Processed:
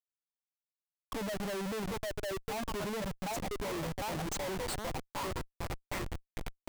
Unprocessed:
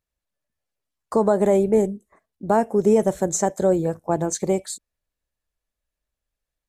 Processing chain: per-bin expansion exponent 3; resonant low shelf 110 Hz -6 dB, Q 1.5; 3.36–4.23 sample-rate reducer 1500 Hz, jitter 20%; delay with a stepping band-pass 0.755 s, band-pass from 750 Hz, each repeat 0.7 oct, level -1 dB; Schmitt trigger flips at -37.5 dBFS; gain -8.5 dB

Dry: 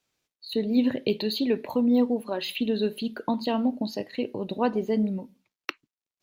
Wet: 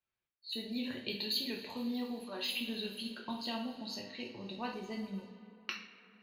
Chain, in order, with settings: passive tone stack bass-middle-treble 5-5-5; two-slope reverb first 0.45 s, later 3.8 s, from -18 dB, DRR -1 dB; low-pass opened by the level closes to 1600 Hz, open at -37.5 dBFS; gain +1 dB

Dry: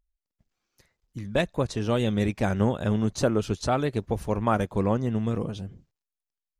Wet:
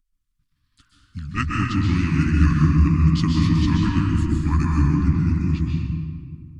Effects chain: delay-line pitch shifter -5.5 st; elliptic band-stop 290–1100 Hz, stop band 50 dB; reverb RT60 1.9 s, pre-delay 0.119 s, DRR -2.5 dB; gain +5 dB

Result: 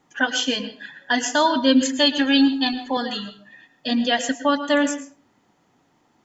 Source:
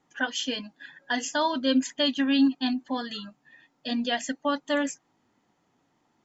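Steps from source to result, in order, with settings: 1.81–2.97 comb 2.3 ms, depth 72%; on a send: reverb RT60 0.40 s, pre-delay 0.103 s, DRR 11 dB; on the sum: gain +7 dB

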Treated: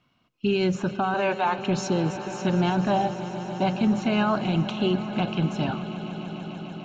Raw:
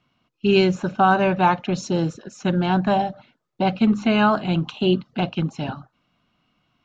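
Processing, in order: 1.14–1.58 HPF 470 Hz 12 dB/oct; limiter -15.5 dBFS, peak gain reduction 11.5 dB; swelling echo 0.147 s, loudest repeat 5, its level -17.5 dB

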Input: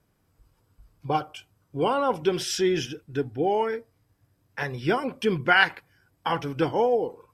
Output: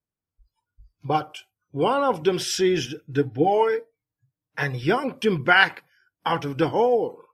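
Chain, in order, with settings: spectral noise reduction 26 dB; 3.03–4.84 comb 6.5 ms, depth 68%; gain +2.5 dB

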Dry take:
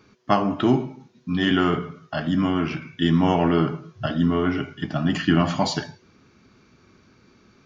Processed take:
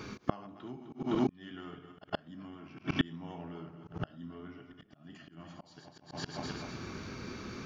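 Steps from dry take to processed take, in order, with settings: regenerating reverse delay 0.128 s, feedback 57%, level -8 dB; flipped gate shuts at -19 dBFS, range -38 dB; reverse echo 0.113 s -19.5 dB; auto swell 0.209 s; gain +11.5 dB

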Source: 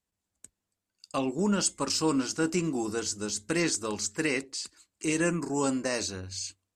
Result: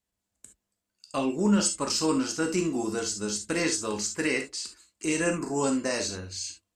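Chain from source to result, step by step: non-linear reverb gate 90 ms flat, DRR 4 dB

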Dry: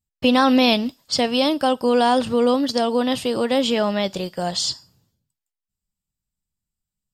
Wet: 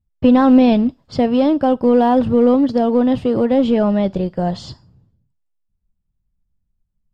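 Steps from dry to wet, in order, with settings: LPF 1700 Hz 6 dB/oct; tilt -3 dB/oct; in parallel at -11 dB: overloaded stage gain 15.5 dB

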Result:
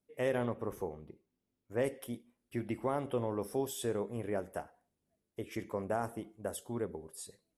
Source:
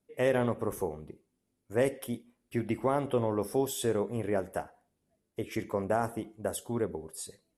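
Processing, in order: 0.45–1.84 bell 9500 Hz -9.5 dB 0.9 oct; gain -5.5 dB

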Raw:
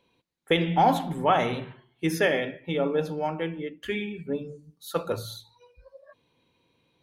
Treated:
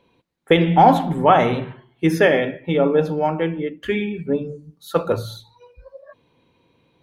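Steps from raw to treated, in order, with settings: high shelf 2900 Hz -9.5 dB; gain +9 dB

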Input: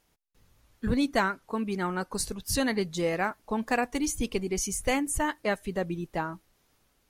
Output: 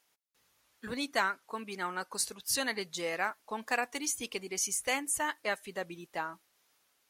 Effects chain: HPF 1100 Hz 6 dB/oct

